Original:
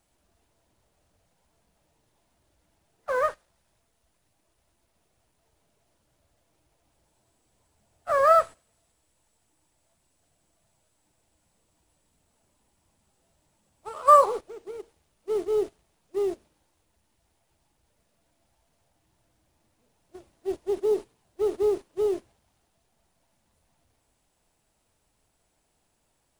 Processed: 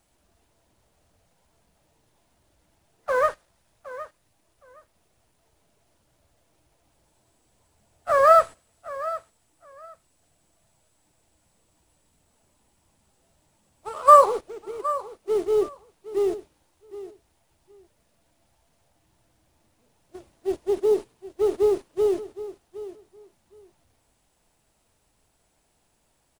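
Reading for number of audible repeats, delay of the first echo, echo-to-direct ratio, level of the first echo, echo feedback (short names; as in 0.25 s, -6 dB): 2, 0.766 s, -15.0 dB, -15.0 dB, 17%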